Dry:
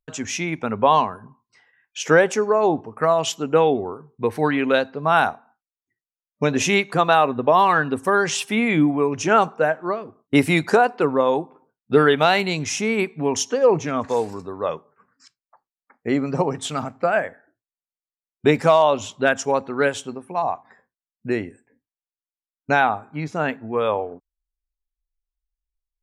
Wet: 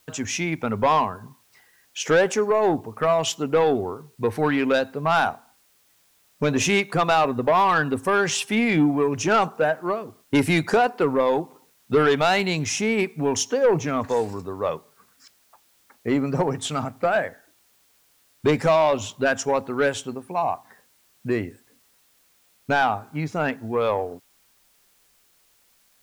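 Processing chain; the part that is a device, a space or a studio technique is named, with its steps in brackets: open-reel tape (saturation -12 dBFS, distortion -14 dB; peaking EQ 100 Hz +4.5 dB 0.84 oct; white noise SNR 38 dB)

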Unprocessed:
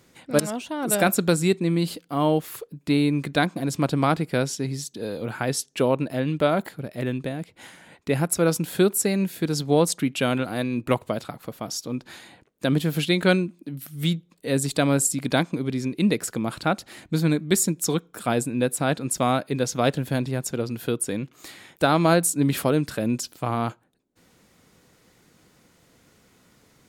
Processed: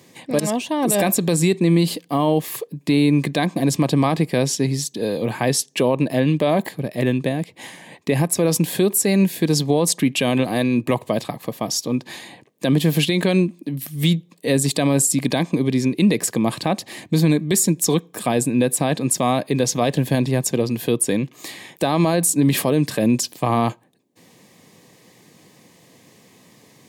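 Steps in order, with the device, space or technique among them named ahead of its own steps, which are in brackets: PA system with an anti-feedback notch (high-pass 110 Hz 24 dB/octave; Butterworth band-stop 1.4 kHz, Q 4; peak limiter -16 dBFS, peak gain reduction 10.5 dB); trim +8 dB

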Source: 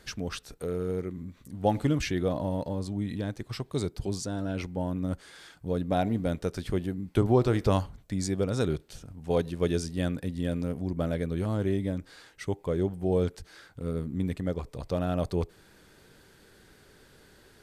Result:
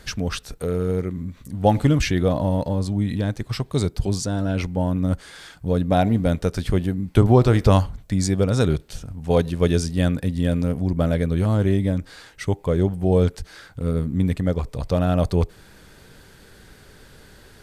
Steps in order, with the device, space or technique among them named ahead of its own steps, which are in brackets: low shelf boost with a cut just above (bass shelf 97 Hz +6.5 dB; peaking EQ 350 Hz -3.5 dB 0.57 oct); trim +8 dB

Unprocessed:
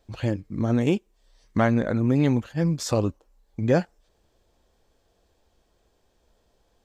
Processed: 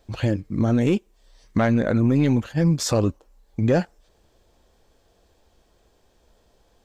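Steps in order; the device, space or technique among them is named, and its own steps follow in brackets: soft clipper into limiter (saturation -12 dBFS, distortion -19 dB; peak limiter -16.5 dBFS, peak gain reduction 3.5 dB); trim +5.5 dB

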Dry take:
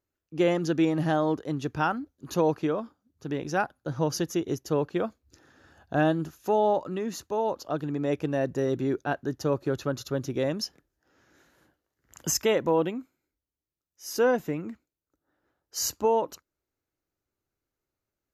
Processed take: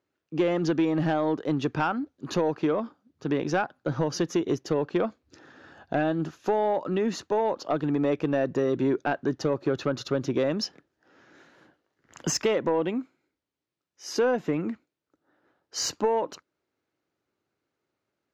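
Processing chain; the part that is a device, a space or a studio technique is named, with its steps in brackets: AM radio (band-pass 150–4300 Hz; compression 6:1, threshold -27 dBFS, peak gain reduction 9 dB; saturation -22 dBFS, distortion -19 dB); trim +7.5 dB

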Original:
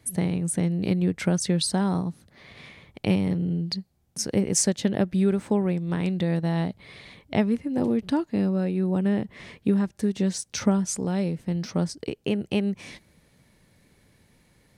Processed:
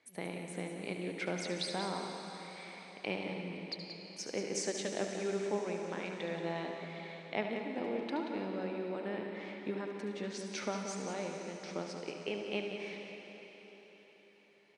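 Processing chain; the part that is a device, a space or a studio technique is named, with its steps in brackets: station announcement (band-pass 410–4600 Hz; peaking EQ 2.3 kHz +5.5 dB 0.22 oct; loudspeakers at several distances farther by 25 m -10 dB, 62 m -9 dB; reverberation RT60 4.5 s, pre-delay 68 ms, DRR 4 dB); trim -8 dB

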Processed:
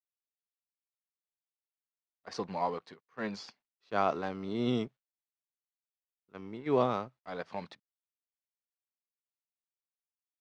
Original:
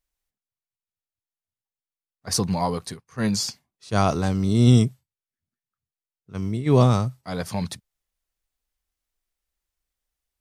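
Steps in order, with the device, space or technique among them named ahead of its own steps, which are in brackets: phone line with mismatched companding (band-pass 350–3200 Hz; companding laws mixed up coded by A); distance through air 100 m; trim -5 dB

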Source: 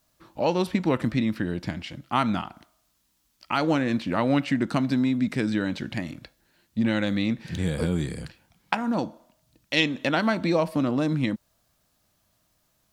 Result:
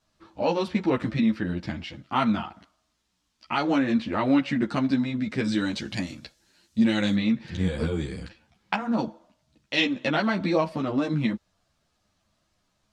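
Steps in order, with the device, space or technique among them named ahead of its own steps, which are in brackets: 5.44–7.15 s: tone controls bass 0 dB, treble +14 dB; string-machine ensemble chorus (three-phase chorus; low-pass 6.1 kHz 12 dB/octave); trim +2.5 dB

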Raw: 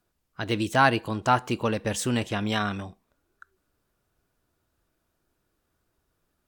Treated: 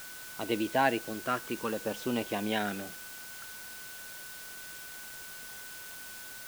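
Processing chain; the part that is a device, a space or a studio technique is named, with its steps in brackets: shortwave radio (band-pass 250–2800 Hz; tremolo 0.35 Hz, depth 42%; LFO notch saw down 0.58 Hz 630–2300 Hz; whistle 1.5 kHz -48 dBFS; white noise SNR 10 dB)

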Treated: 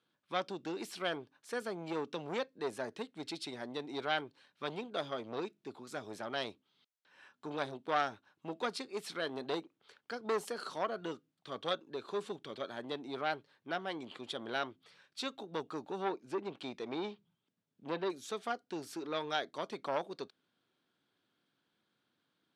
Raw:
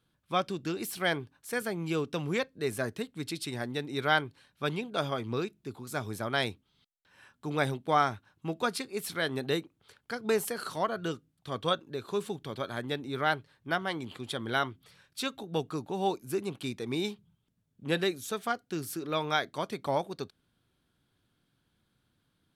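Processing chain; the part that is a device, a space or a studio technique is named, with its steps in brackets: 15.99–18.10 s: low-pass that closes with the level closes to 2.8 kHz, closed at -26.5 dBFS; dynamic bell 1.9 kHz, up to -5 dB, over -43 dBFS, Q 0.94; public-address speaker with an overloaded transformer (transformer saturation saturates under 1.5 kHz; band-pass 270–5900 Hz); trim -2 dB

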